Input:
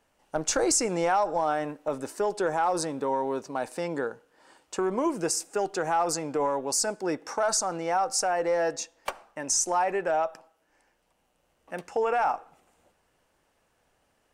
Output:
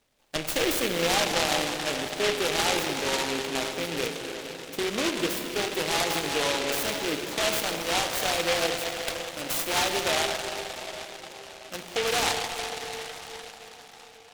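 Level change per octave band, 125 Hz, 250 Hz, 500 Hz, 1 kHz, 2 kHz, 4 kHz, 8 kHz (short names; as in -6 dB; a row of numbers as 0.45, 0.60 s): +3.0, 0.0, -1.0, -3.0, +7.0, +11.5, -1.5 dB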